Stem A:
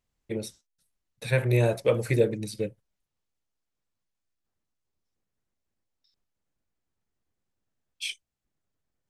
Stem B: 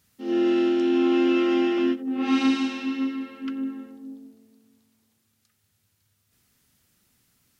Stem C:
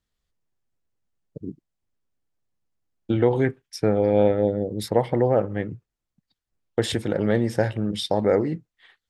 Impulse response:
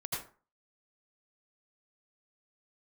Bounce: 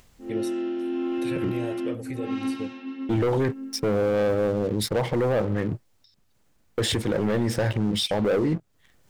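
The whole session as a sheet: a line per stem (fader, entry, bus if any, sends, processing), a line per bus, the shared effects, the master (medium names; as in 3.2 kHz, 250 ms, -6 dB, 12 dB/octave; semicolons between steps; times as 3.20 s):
0.0 dB, 0.00 s, no send, upward compressor, threshold -37 dBFS; peak limiter -18.5 dBFS, peak gain reduction 9 dB; auto duck -7 dB, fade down 1.80 s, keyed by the third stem
-7.0 dB, 0.00 s, no send, level-controlled noise filter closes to 1.3 kHz, open at -20 dBFS; treble shelf 3.1 kHz -10 dB
-4.5 dB, 0.00 s, no send, waveshaping leveller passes 3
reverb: none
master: peak limiter -17.5 dBFS, peak gain reduction 7 dB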